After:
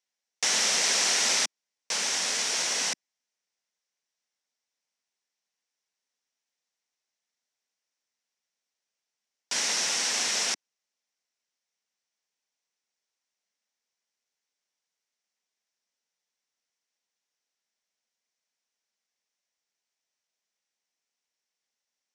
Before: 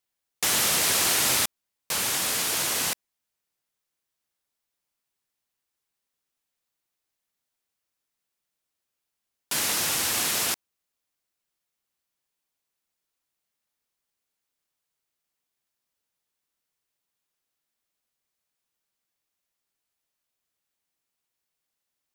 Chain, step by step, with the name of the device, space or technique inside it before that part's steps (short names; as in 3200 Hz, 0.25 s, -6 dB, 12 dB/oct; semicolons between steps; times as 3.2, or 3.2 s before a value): television speaker (speaker cabinet 210–7900 Hz, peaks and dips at 320 Hz -9 dB, 1200 Hz -4 dB, 2000 Hz +3 dB, 5700 Hz +8 dB); gain -2 dB